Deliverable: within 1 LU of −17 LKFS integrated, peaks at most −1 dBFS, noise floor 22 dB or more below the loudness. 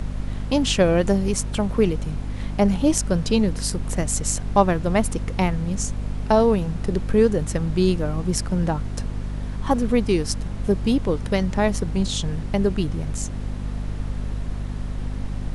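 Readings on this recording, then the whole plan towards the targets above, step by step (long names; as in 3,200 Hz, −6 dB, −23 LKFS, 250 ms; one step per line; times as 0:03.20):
mains hum 50 Hz; hum harmonics up to 250 Hz; level of the hum −26 dBFS; background noise floor −30 dBFS; target noise floor −45 dBFS; integrated loudness −23.0 LKFS; sample peak −3.0 dBFS; target loudness −17.0 LKFS
→ mains-hum notches 50/100/150/200/250 Hz
noise reduction from a noise print 15 dB
level +6 dB
brickwall limiter −1 dBFS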